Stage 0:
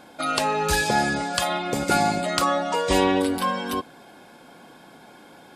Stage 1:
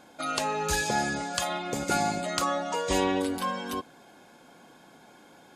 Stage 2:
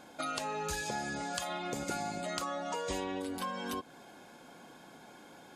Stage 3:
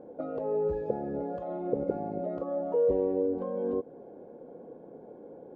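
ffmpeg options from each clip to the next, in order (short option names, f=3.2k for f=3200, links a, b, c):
-af "equalizer=f=6.6k:w=5.4:g=8,volume=-6dB"
-af "acompressor=threshold=-34dB:ratio=6"
-af "lowpass=f=480:t=q:w=4.9,volume=2.5dB"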